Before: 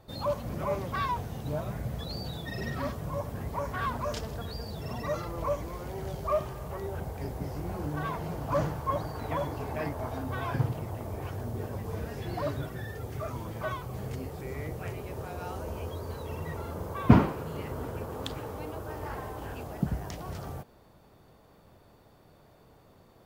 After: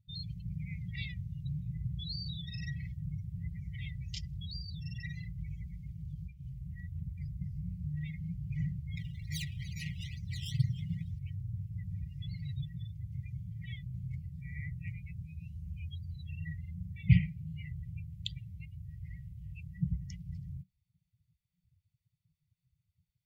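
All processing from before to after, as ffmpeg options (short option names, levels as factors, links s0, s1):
-filter_complex "[0:a]asettb=1/sr,asplit=3[s0][s1][s2];[s0]atrim=end=5.934[s3];[s1]atrim=start=5.93:end=6.52,asetpts=PTS-STARTPTS,afade=t=in:d=0.004:c=qsin,afade=t=out:st=0.586:d=0.004:c=qsin,bandreject=f=2000:w=9.3,acompressor=threshold=0.0251:ratio=5:attack=3.2:release=140:knee=1:detection=peak[s4];[s2]atrim=start=6.516[s5];[s3][s4]acrossfade=d=0.004:c1=hsin:c2=qsin[s6];[s6][s5]acrossfade=d=0.004:c1=qsin:c2=hsin,asettb=1/sr,asplit=3[s7][s8][s9];[s7]atrim=end=8.974[s10];[s8]atrim=start=8.97:end=11.19,asetpts=PTS-STARTPTS,afade=t=in:d=0.004:c=qsin,afade=t=out:st=2.216:d=0.004:c=qsin,acrusher=samples=14:mix=1:aa=0.000001:lfo=1:lforange=14:lforate=2.2,asplit=7[s11][s12][s13][s14][s15][s16][s17];[s12]adelay=304,afreqshift=42,volume=0.355[s18];[s13]adelay=608,afreqshift=84,volume=0.184[s19];[s14]adelay=912,afreqshift=126,volume=0.0955[s20];[s15]adelay=1216,afreqshift=168,volume=0.0501[s21];[s16]adelay=1520,afreqshift=210,volume=0.026[s22];[s17]adelay=1824,afreqshift=252,volume=0.0135[s23];[s11][s18][s19][s20][s21][s22][s23]amix=inputs=7:normalize=0,atrim=end_sample=97902[s24];[s9]atrim=start=11.186[s25];[s10][s24]acrossfade=d=0.004:c1=hsin:c2=qsin[s26];[s26][s25]acrossfade=d=0.004:c1=qsin:c2=hsin,afftdn=nr=28:nf=-42,afftfilt=real='re*(1-between(b*sr/4096,190,1900))':imag='im*(1-between(b*sr/4096,190,1900))':win_size=4096:overlap=0.75,lowshelf=f=150:g=-5,volume=1.19"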